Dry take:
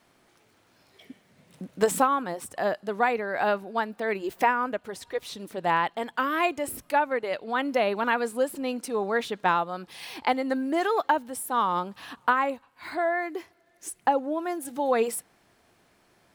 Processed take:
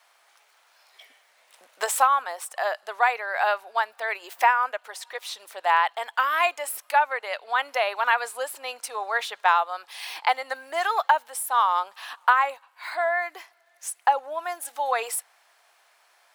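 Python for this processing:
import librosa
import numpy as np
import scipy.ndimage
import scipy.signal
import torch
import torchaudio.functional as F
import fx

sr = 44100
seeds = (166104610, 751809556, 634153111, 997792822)

y = scipy.signal.sosfilt(scipy.signal.butter(4, 700.0, 'highpass', fs=sr, output='sos'), x)
y = y * librosa.db_to_amplitude(4.5)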